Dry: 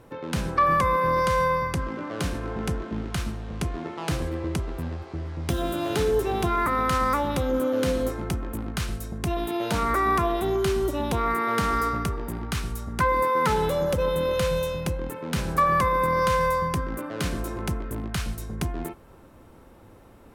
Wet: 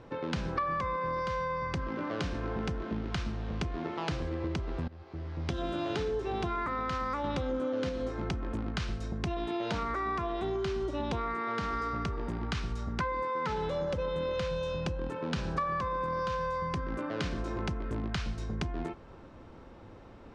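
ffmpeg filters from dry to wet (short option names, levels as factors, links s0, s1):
-filter_complex "[0:a]asettb=1/sr,asplit=3[s0][s1][s2];[s0]atrim=end=14.494[s3];[s1]atrim=start=14.49:end=16.56,asetpts=PTS-STARTPTS,afade=t=in:d=0.004:c=qsin,afade=t=out:st=2.066:d=0.004:c=qsin,bandreject=f=2100:w=11[s4];[s2]atrim=start=16.556[s5];[s3][s4]acrossfade=d=0.004:c1=hsin:c2=qsin[s6];[s6][s5]acrossfade=d=0.004:c1=qsin:c2=hsin,asplit=4[s7][s8][s9][s10];[s7]atrim=end=4.88,asetpts=PTS-STARTPTS,afade=t=out:st=4.876:d=0.004:c=hsin:silence=0.1[s11];[s8]atrim=start=4.88:end=7.242,asetpts=PTS-STARTPTS,afade=t=in:d=0.83:silence=0.1[s12];[s9]atrim=start=7.238:end=7.892,asetpts=PTS-STARTPTS,volume=1.58[s13];[s10]atrim=start=7.888[s14];[s11][s12]concat=n=2:v=0:a=1[s15];[s15][s13]acrossfade=d=0.004:c1=hsin:c2=hsin[s16];[s16][s14]acrossfade=d=0.004:c1=hsin:c2=hsin,lowpass=f=5700:w=0.5412,lowpass=f=5700:w=1.3066,acompressor=threshold=0.0316:ratio=6"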